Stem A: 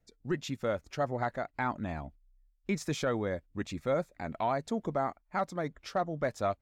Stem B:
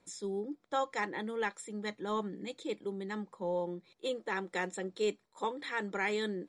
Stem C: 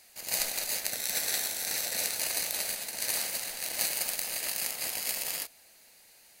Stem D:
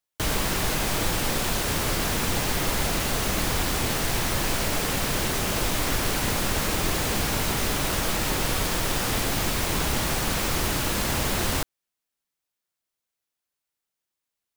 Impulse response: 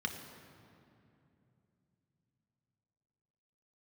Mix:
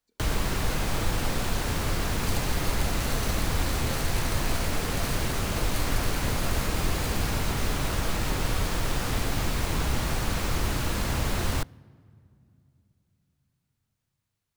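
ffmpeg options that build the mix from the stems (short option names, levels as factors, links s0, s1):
-filter_complex "[0:a]volume=0.168,asplit=2[s0][s1];[s1]volume=0.596[s2];[1:a]adelay=150,volume=0.15[s3];[2:a]adelay=1950,volume=0.422[s4];[3:a]acrossover=split=150[s5][s6];[s6]acompressor=threshold=0.00631:ratio=1.5[s7];[s5][s7]amix=inputs=2:normalize=0,volume=1.41,asplit=2[s8][s9];[s9]volume=0.075[s10];[4:a]atrim=start_sample=2205[s11];[s2][s10]amix=inputs=2:normalize=0[s12];[s12][s11]afir=irnorm=-1:irlink=0[s13];[s0][s3][s4][s8][s13]amix=inputs=5:normalize=0,highshelf=f=7600:g=-5.5"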